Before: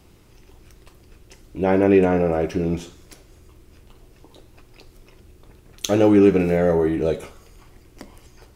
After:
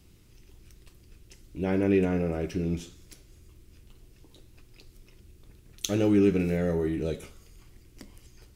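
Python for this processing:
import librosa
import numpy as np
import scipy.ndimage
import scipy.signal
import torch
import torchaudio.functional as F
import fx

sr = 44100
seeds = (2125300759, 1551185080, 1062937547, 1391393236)

y = fx.peak_eq(x, sr, hz=800.0, db=-11.0, octaves=2.1)
y = F.gain(torch.from_numpy(y), -3.5).numpy()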